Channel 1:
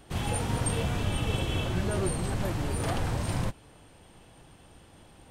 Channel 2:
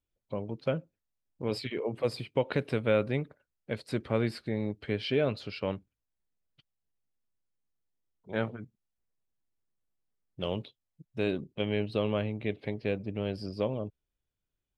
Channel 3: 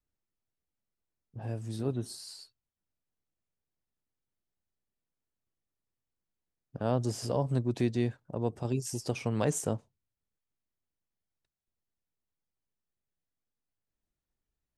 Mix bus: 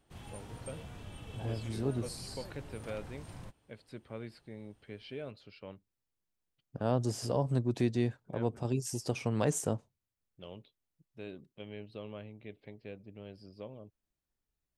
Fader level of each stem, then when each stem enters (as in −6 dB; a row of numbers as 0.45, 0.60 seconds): −18.0, −15.0, −1.0 decibels; 0.00, 0.00, 0.00 seconds